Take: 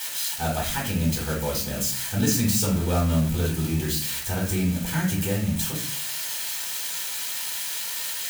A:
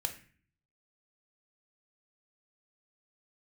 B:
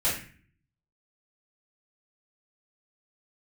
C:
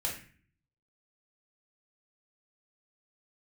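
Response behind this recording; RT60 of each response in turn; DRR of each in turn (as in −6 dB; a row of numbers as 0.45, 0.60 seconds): C; 0.40, 0.40, 0.40 seconds; 5.5, −10.5, −3.0 decibels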